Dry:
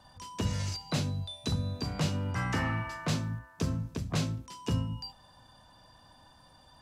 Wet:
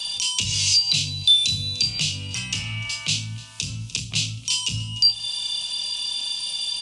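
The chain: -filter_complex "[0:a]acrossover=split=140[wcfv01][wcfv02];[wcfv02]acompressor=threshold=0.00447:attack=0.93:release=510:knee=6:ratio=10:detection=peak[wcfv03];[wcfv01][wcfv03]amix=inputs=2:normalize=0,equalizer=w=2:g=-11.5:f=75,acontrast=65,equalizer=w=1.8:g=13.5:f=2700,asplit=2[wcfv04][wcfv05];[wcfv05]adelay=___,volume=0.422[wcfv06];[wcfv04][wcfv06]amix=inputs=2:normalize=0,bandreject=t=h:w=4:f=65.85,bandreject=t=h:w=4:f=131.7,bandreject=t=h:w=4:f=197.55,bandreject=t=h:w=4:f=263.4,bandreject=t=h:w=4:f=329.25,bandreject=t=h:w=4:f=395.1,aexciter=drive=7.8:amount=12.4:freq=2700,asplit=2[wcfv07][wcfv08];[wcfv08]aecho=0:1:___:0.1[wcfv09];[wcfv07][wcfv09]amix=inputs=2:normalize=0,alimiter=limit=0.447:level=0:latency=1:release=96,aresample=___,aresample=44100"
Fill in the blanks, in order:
28, 298, 22050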